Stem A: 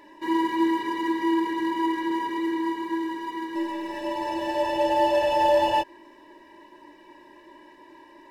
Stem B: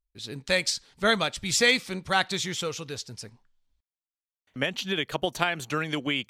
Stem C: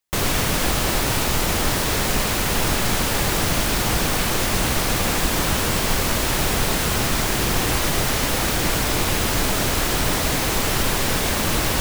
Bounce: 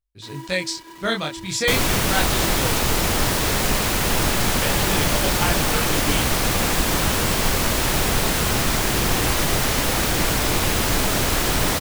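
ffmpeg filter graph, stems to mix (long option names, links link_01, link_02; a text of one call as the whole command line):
ffmpeg -i stem1.wav -i stem2.wav -i stem3.wav -filter_complex "[0:a]highpass=frequency=120:width=0.5412,highpass=frequency=120:width=1.3066,acrusher=bits=4:mix=0:aa=0.000001,volume=-14.5dB[link_01];[1:a]equalizer=frequency=110:width_type=o:width=1:gain=7,flanger=delay=20:depth=7.3:speed=0.32,volume=2.5dB[link_02];[2:a]adelay=1550,volume=0.5dB[link_03];[link_01][link_02][link_03]amix=inputs=3:normalize=0" out.wav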